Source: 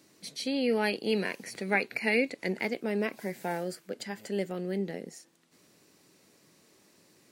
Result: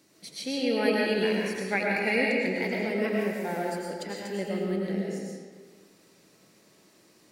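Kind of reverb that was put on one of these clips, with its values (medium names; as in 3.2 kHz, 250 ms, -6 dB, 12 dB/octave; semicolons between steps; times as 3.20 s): algorithmic reverb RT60 1.6 s, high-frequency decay 0.7×, pre-delay 65 ms, DRR -3 dB; trim -1.5 dB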